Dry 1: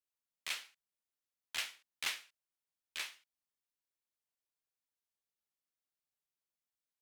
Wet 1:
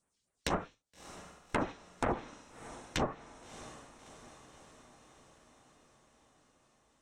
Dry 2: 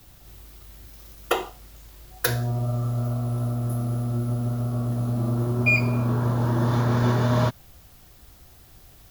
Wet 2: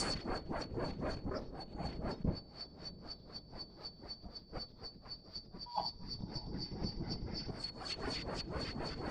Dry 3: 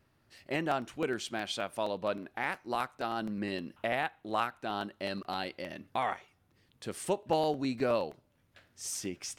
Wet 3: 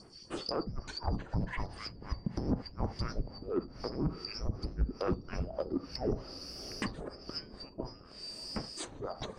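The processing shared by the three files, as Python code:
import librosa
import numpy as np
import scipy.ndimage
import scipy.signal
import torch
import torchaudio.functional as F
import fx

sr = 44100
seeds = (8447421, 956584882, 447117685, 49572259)

y = fx.band_shuffle(x, sr, order='2341')
y = fx.dereverb_blind(y, sr, rt60_s=0.85)
y = scipy.signal.sosfilt(scipy.signal.butter(12, 9600.0, 'lowpass', fs=sr, output='sos'), y)
y = fx.high_shelf(y, sr, hz=2600.0, db=-6.0)
y = fx.over_compress(y, sr, threshold_db=-43.0, ratio=-1.0)
y = fx.phaser_stages(y, sr, stages=2, low_hz=710.0, high_hz=4300.0, hz=4.0, feedback_pct=45)
y = fx.fold_sine(y, sr, drive_db=18, ceiling_db=-19.0)
y = fx.echo_diffused(y, sr, ms=636, feedback_pct=63, wet_db=-16.0)
y = fx.rev_gated(y, sr, seeds[0], gate_ms=100, shape='flat', drr_db=10.5)
y = fx.env_lowpass_down(y, sr, base_hz=410.0, full_db=-20.0)
y = y * librosa.db_to_amplitude(-3.5)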